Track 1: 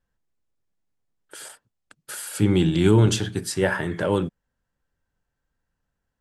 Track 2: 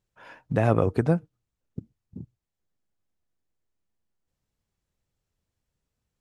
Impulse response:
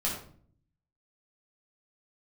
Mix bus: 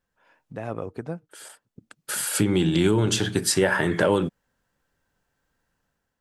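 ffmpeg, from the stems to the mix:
-filter_complex "[0:a]acompressor=threshold=-24dB:ratio=5,volume=2.5dB[a];[1:a]volume=-14.5dB,asplit=2[b][c];[c]apad=whole_len=273823[d];[a][d]sidechaincompress=threshold=-46dB:ratio=12:attack=27:release=1060[e];[e][b]amix=inputs=2:normalize=0,lowshelf=f=110:g=-10.5,dynaudnorm=f=190:g=5:m=6dB"

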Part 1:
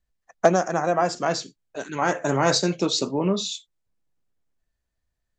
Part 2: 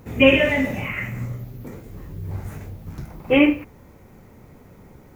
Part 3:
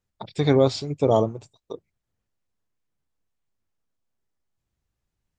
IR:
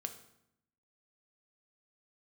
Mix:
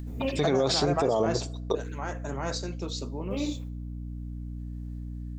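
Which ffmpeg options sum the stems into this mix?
-filter_complex "[0:a]acompressor=mode=upward:threshold=-31dB:ratio=2.5,volume=-6.5dB,afade=t=out:st=1.58:d=0.41:silence=0.398107,asplit=2[a][b];[b]volume=-11.5dB[c];[1:a]equalizer=f=1.9k:w=0.83:g=-11.5,tremolo=f=0.8:d=0.6,volume=-14dB,asplit=3[d][e][f];[d]atrim=end=0.57,asetpts=PTS-STARTPTS,afade=t=out:st=0.566:d=0.004:c=hsin[g];[e]atrim=start=0.57:end=2.81,asetpts=PTS-STARTPTS,volume=0[h];[f]atrim=start=2.81,asetpts=PTS-STARTPTS,afade=t=in:d=0.004:c=hsin[i];[g][h][i]concat=n=3:v=0:a=1,asplit=2[j][k];[k]volume=-9dB[l];[2:a]highpass=f=260:p=1,dynaudnorm=f=150:g=7:m=15.5dB,volume=1.5dB,asplit=2[m][n];[n]volume=-15.5dB[o];[j][m]amix=inputs=2:normalize=0,agate=range=-12dB:threshold=-51dB:ratio=16:detection=peak,alimiter=limit=-7.5dB:level=0:latency=1,volume=0dB[p];[3:a]atrim=start_sample=2205[q];[c][l][o]amix=inputs=3:normalize=0[r];[r][q]afir=irnorm=-1:irlink=0[s];[a][p][s]amix=inputs=3:normalize=0,aeval=exprs='val(0)+0.0178*(sin(2*PI*60*n/s)+sin(2*PI*2*60*n/s)/2+sin(2*PI*3*60*n/s)/3+sin(2*PI*4*60*n/s)/4+sin(2*PI*5*60*n/s)/5)':c=same,alimiter=limit=-16dB:level=0:latency=1:release=47"

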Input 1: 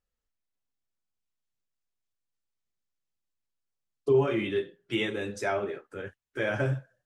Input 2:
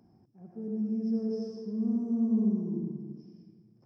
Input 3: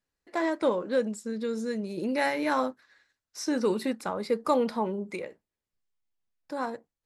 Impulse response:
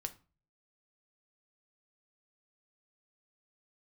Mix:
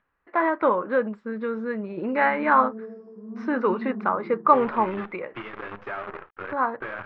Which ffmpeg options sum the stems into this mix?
-filter_complex "[0:a]acompressor=threshold=-35dB:ratio=16,acrusher=bits=7:dc=4:mix=0:aa=0.000001,adelay=450,volume=-0.5dB[a];[1:a]highpass=220,adelay=1500,volume=-4.5dB[b];[2:a]agate=range=-33dB:threshold=-47dB:ratio=3:detection=peak,volume=1dB[c];[a][b][c]amix=inputs=3:normalize=0,equalizer=f=1.2k:t=o:w=1.1:g=12.5,acompressor=mode=upward:threshold=-45dB:ratio=2.5,lowpass=f=2.6k:w=0.5412,lowpass=f=2.6k:w=1.3066"

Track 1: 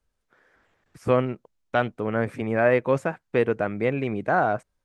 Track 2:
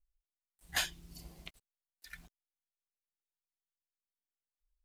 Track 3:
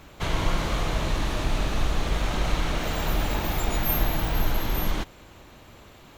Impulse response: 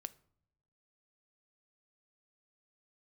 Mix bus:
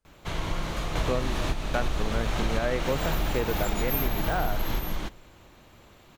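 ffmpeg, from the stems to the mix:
-filter_complex "[0:a]volume=-2.5dB,asplit=2[a][b];[1:a]volume=-14.5dB[c];[2:a]adelay=50,volume=0dB,asplit=2[d][e];[e]volume=-7.5dB[f];[b]apad=whole_len=274521[g];[d][g]sidechaingate=range=-10dB:threshold=-56dB:ratio=16:detection=peak[h];[3:a]atrim=start_sample=2205[i];[f][i]afir=irnorm=-1:irlink=0[j];[a][c][h][j]amix=inputs=4:normalize=0,acompressor=threshold=-22dB:ratio=6"

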